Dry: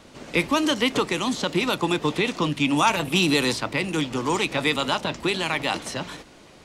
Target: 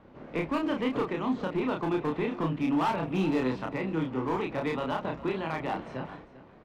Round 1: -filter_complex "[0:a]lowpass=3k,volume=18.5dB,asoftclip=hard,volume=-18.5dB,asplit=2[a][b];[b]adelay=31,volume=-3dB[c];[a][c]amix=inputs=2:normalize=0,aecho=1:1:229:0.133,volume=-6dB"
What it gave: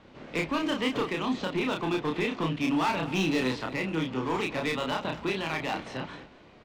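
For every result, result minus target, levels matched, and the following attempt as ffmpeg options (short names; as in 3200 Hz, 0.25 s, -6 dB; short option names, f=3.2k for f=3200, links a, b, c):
echo 0.168 s early; 4000 Hz band +8.5 dB
-filter_complex "[0:a]lowpass=3k,volume=18.5dB,asoftclip=hard,volume=-18.5dB,asplit=2[a][b];[b]adelay=31,volume=-3dB[c];[a][c]amix=inputs=2:normalize=0,aecho=1:1:397:0.133,volume=-6dB"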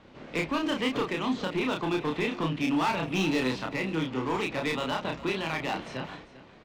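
4000 Hz band +8.5 dB
-filter_complex "[0:a]lowpass=1.4k,volume=18.5dB,asoftclip=hard,volume=-18.5dB,asplit=2[a][b];[b]adelay=31,volume=-3dB[c];[a][c]amix=inputs=2:normalize=0,aecho=1:1:397:0.133,volume=-6dB"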